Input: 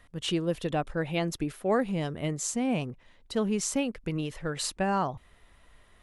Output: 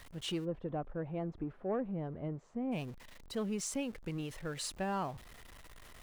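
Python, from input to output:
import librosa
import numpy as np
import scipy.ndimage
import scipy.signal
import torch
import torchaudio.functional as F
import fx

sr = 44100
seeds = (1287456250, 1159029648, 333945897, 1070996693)

y = x + 0.5 * 10.0 ** (-41.0 / 20.0) * np.sign(x)
y = fx.lowpass(y, sr, hz=1000.0, slope=12, at=(0.44, 2.71), fade=0.02)
y = 10.0 ** (-15.5 / 20.0) * np.tanh(y / 10.0 ** (-15.5 / 20.0))
y = y * librosa.db_to_amplitude(-8.5)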